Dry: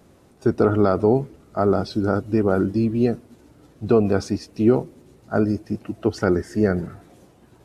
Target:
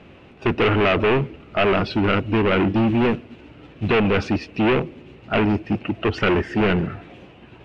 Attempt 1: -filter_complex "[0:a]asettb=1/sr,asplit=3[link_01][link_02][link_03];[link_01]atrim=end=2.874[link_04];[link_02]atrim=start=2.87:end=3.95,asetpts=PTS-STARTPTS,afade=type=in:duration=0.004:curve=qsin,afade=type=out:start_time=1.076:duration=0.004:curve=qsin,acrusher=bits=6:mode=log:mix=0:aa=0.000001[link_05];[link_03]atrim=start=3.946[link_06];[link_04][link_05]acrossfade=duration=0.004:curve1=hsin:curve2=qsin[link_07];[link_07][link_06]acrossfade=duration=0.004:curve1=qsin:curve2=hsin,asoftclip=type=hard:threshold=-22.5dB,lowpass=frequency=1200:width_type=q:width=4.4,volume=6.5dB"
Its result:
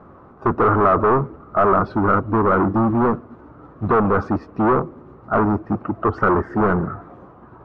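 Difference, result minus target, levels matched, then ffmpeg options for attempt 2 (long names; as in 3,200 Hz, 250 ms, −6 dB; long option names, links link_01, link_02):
1,000 Hz band +5.5 dB
-filter_complex "[0:a]asettb=1/sr,asplit=3[link_01][link_02][link_03];[link_01]atrim=end=2.874[link_04];[link_02]atrim=start=2.87:end=3.95,asetpts=PTS-STARTPTS,afade=type=in:duration=0.004:curve=qsin,afade=type=out:start_time=1.076:duration=0.004:curve=qsin,acrusher=bits=6:mode=log:mix=0:aa=0.000001[link_05];[link_03]atrim=start=3.946[link_06];[link_04][link_05]acrossfade=duration=0.004:curve1=hsin:curve2=qsin[link_07];[link_07][link_06]acrossfade=duration=0.004:curve1=qsin:curve2=hsin,asoftclip=type=hard:threshold=-22.5dB,lowpass=frequency=2700:width_type=q:width=4.4,volume=6.5dB"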